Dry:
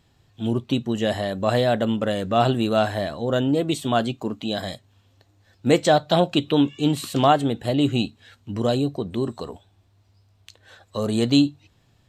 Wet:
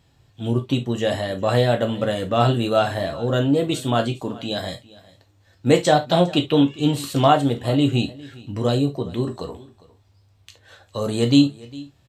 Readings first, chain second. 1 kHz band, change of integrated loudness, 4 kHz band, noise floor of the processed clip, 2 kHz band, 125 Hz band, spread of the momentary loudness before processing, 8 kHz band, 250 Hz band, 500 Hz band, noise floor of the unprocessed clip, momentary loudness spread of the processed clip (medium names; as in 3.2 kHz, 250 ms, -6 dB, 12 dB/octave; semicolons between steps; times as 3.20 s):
+1.0 dB, +1.5 dB, +1.5 dB, -59 dBFS, +1.0 dB, +4.0 dB, 11 LU, +1.5 dB, +1.0 dB, +1.5 dB, -61 dBFS, 13 LU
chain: on a send: delay 405 ms -21 dB; on the sum: gated-style reverb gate 90 ms falling, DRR 4 dB